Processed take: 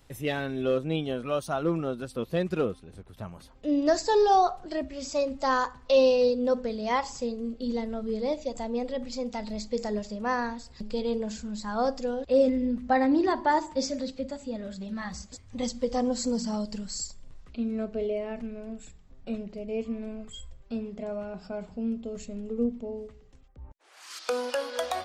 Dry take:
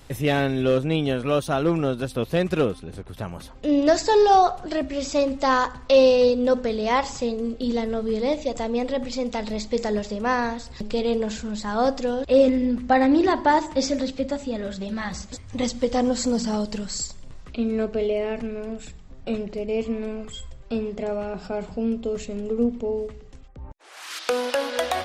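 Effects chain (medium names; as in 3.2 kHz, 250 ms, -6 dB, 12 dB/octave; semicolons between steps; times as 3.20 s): spectral noise reduction 6 dB; trim -5 dB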